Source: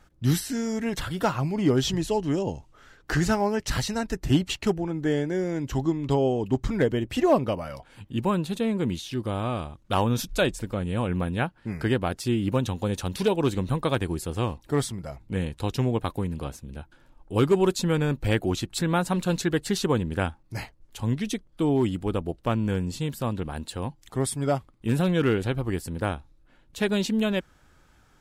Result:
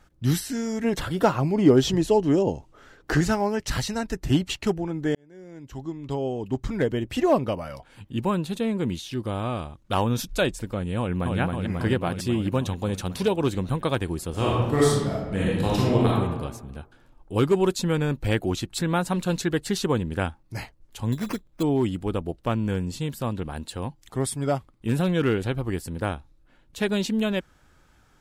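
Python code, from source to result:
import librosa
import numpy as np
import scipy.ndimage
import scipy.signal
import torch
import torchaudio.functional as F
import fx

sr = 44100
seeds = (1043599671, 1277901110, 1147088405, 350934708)

y = fx.peak_eq(x, sr, hz=410.0, db=6.5, octaves=2.3, at=(0.84, 3.21))
y = fx.echo_throw(y, sr, start_s=10.98, length_s=0.41, ms=270, feedback_pct=75, wet_db=-2.5)
y = fx.reverb_throw(y, sr, start_s=14.3, length_s=1.77, rt60_s=1.2, drr_db=-6.0)
y = fx.sample_hold(y, sr, seeds[0], rate_hz=3700.0, jitter_pct=0, at=(21.12, 21.63))
y = fx.edit(y, sr, fx.fade_in_span(start_s=5.15, length_s=1.93), tone=tone)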